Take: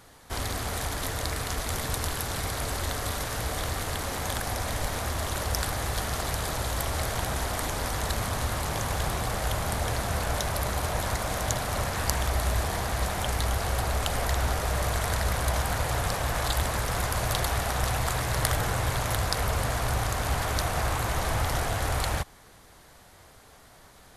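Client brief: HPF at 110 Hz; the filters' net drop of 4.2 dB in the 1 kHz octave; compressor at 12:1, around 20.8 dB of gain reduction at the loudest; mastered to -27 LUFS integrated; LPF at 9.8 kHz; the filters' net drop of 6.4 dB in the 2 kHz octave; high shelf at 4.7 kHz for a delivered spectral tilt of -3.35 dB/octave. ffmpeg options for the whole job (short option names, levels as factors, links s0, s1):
-af "highpass=110,lowpass=9800,equalizer=f=1000:t=o:g=-4,equalizer=f=2000:t=o:g=-8,highshelf=f=4700:g=6.5,acompressor=threshold=0.00631:ratio=12,volume=9.44"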